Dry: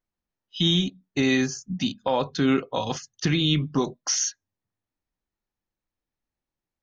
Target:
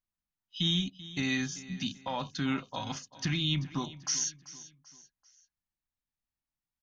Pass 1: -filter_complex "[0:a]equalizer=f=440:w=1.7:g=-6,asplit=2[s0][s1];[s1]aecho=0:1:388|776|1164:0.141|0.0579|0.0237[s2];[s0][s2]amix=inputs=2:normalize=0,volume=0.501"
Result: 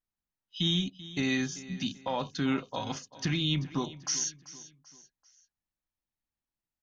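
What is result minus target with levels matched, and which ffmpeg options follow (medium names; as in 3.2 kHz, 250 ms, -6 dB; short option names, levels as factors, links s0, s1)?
500 Hz band +4.5 dB
-filter_complex "[0:a]equalizer=f=440:w=1.7:g=-14.5,asplit=2[s0][s1];[s1]aecho=0:1:388|776|1164:0.141|0.0579|0.0237[s2];[s0][s2]amix=inputs=2:normalize=0,volume=0.501"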